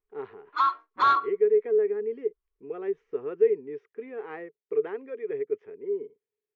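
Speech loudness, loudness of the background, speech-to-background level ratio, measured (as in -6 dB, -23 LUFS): -29.0 LUFS, -24.5 LUFS, -4.5 dB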